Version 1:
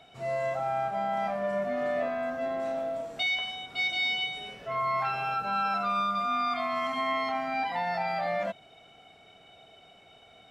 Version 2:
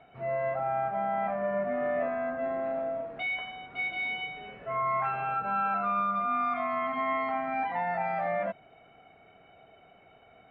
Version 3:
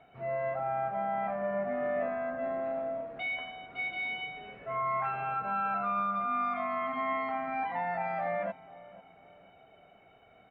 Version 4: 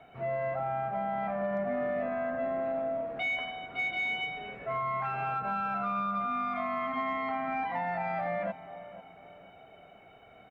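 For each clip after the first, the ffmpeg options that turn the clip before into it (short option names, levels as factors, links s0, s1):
-af "lowpass=f=2300:w=0.5412,lowpass=f=2300:w=1.3066"
-filter_complex "[0:a]asplit=2[s0][s1];[s1]adelay=491,lowpass=f=980:p=1,volume=0.141,asplit=2[s2][s3];[s3]adelay=491,lowpass=f=980:p=1,volume=0.51,asplit=2[s4][s5];[s5]adelay=491,lowpass=f=980:p=1,volume=0.51,asplit=2[s6][s7];[s7]adelay=491,lowpass=f=980:p=1,volume=0.51[s8];[s0][s2][s4][s6][s8]amix=inputs=5:normalize=0,volume=0.75"
-filter_complex "[0:a]acrossover=split=290|3000[s0][s1][s2];[s1]acompressor=threshold=0.02:ratio=10[s3];[s0][s3][s2]amix=inputs=3:normalize=0,aeval=exprs='0.0473*(cos(1*acos(clip(val(0)/0.0473,-1,1)))-cos(1*PI/2))+0.000596*(cos(5*acos(clip(val(0)/0.0473,-1,1)))-cos(5*PI/2))':c=same,aecho=1:1:325:0.0708,volume=1.58"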